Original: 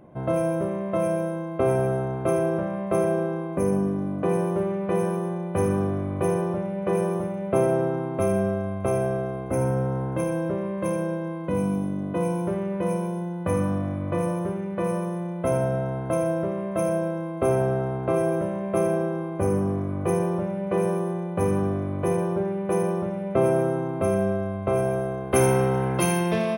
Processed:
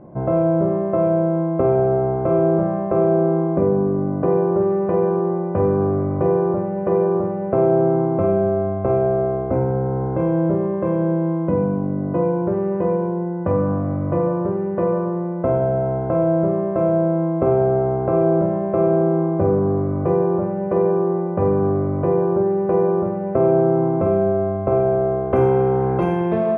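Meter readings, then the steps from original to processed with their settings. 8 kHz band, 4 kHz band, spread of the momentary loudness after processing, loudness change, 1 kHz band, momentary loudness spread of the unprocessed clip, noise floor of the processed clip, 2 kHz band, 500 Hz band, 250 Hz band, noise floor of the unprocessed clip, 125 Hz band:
below −30 dB, can't be measured, 4 LU, +6.0 dB, +5.5 dB, 5 LU, −24 dBFS, −2.5 dB, +7.0 dB, +5.5 dB, −31 dBFS, +5.0 dB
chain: low-pass filter 1,100 Hz 12 dB per octave
downward compressor 2 to 1, threshold −25 dBFS, peak gain reduction 5.5 dB
flutter between parallel walls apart 8.3 metres, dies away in 0.37 s
level +7.5 dB

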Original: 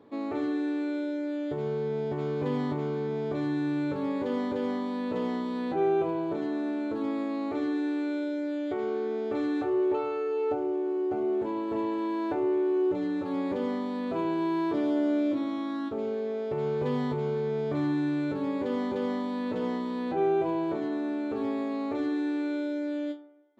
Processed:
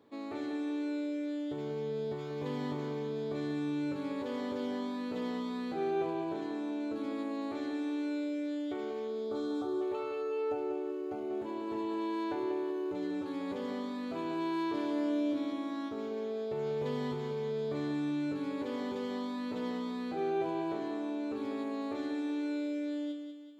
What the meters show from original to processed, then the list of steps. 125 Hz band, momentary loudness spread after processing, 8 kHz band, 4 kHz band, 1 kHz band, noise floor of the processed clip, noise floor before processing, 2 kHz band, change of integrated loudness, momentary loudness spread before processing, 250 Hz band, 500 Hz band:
−7.5 dB, 4 LU, can't be measured, −1.0 dB, −5.5 dB, −40 dBFS, −32 dBFS, −5.0 dB, −6.0 dB, 5 LU, −5.5 dB, −6.5 dB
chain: gain on a spectral selection 0:09.07–0:09.82, 1,500–3,100 Hz −16 dB
high-shelf EQ 2,700 Hz +10.5 dB
on a send: feedback echo with a high-pass in the loop 191 ms, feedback 51%, high-pass 180 Hz, level −7 dB
on the sum: level −8.5 dB

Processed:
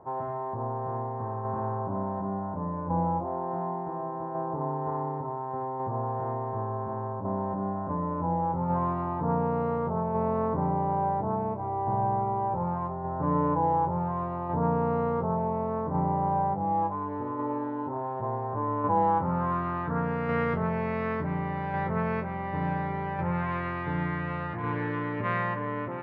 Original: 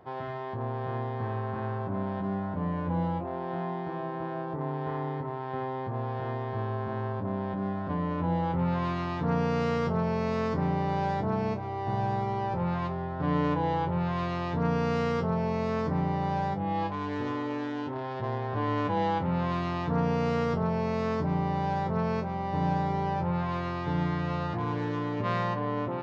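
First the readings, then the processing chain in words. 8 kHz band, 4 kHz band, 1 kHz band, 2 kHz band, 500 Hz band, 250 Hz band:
can't be measured, below −10 dB, +3.0 dB, +0.5 dB, +0.5 dB, −1.0 dB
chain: low-pass filter sweep 910 Hz → 2,000 Hz, 0:18.79–0:20.52
notch filter 740 Hz, Q 12
shaped tremolo saw down 0.69 Hz, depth 35%

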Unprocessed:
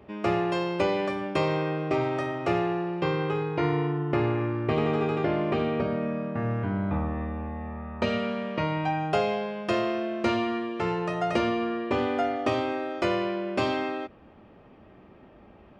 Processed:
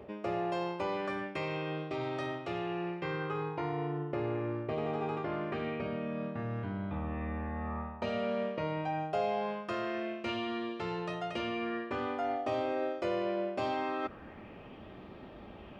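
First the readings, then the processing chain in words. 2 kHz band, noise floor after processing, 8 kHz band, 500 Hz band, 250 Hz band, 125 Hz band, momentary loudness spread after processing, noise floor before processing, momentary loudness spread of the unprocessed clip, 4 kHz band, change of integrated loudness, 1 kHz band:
−7.0 dB, −49 dBFS, can't be measured, −7.5 dB, −8.5 dB, −9.0 dB, 5 LU, −53 dBFS, 4 LU, −7.5 dB, −7.5 dB, −6.5 dB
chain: reversed playback
downward compressor 8 to 1, threshold −37 dBFS, peak gain reduction 17 dB
reversed playback
auto-filter bell 0.23 Hz 510–3,900 Hz +8 dB
level +3 dB

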